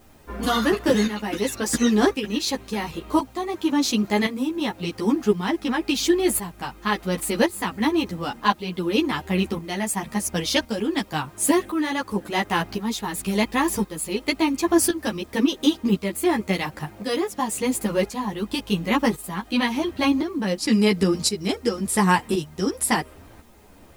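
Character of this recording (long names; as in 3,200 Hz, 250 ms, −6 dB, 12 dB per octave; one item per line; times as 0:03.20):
tremolo saw up 0.94 Hz, depth 65%
a quantiser's noise floor 10 bits, dither triangular
a shimmering, thickened sound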